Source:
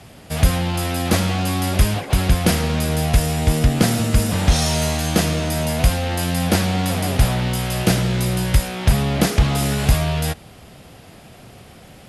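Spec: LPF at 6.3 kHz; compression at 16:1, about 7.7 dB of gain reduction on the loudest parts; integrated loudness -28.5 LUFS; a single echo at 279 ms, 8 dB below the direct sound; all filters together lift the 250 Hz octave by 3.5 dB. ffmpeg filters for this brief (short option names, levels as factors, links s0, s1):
-af "lowpass=6300,equalizer=f=250:t=o:g=5,acompressor=threshold=0.158:ratio=16,aecho=1:1:279:0.398,volume=0.447"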